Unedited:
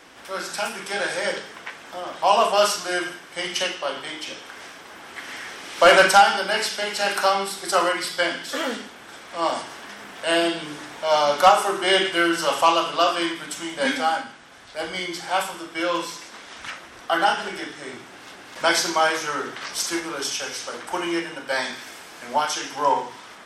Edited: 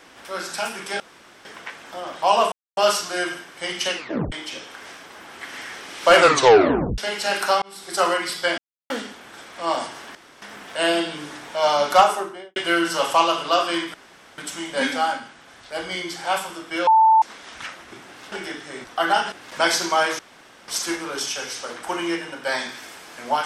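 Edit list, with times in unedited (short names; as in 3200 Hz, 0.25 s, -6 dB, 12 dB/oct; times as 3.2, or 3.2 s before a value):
1–1.45 room tone
2.52 insert silence 0.25 s
3.71 tape stop 0.36 s
5.92 tape stop 0.81 s
7.37–7.75 fade in
8.33–8.65 mute
9.9 insert room tone 0.27 s
11.49–12.04 studio fade out
13.42 insert room tone 0.44 s
15.91–16.26 bleep 886 Hz -10.5 dBFS
16.96–17.44 swap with 17.96–18.36
19.23–19.72 room tone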